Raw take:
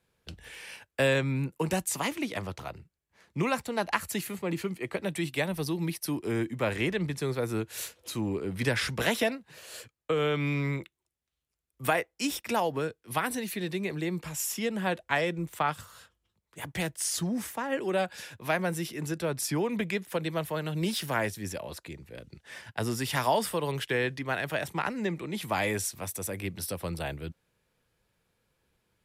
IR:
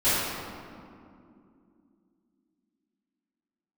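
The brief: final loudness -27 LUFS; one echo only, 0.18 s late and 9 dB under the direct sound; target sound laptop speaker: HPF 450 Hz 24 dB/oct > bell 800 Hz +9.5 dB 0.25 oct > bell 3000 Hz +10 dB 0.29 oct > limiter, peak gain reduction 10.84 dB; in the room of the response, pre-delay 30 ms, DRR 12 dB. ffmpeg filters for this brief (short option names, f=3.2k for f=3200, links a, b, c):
-filter_complex "[0:a]aecho=1:1:180:0.355,asplit=2[a][b];[1:a]atrim=start_sample=2205,adelay=30[c];[b][c]afir=irnorm=-1:irlink=0,volume=-28dB[d];[a][d]amix=inputs=2:normalize=0,highpass=f=450:w=0.5412,highpass=f=450:w=1.3066,equalizer=f=800:t=o:w=0.25:g=9.5,equalizer=f=3k:t=o:w=0.29:g=10,volume=5.5dB,alimiter=limit=-14.5dB:level=0:latency=1"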